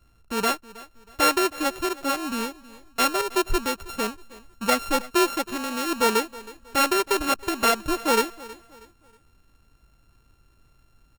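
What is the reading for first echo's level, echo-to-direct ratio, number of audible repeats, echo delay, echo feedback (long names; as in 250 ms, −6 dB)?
−19.5 dB, −19.0 dB, 2, 319 ms, 35%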